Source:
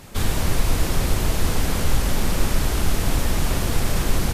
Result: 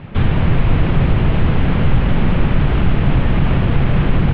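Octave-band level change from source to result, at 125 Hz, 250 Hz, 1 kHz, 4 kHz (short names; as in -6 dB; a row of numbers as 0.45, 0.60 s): +10.5, +10.0, +4.5, -2.5 dB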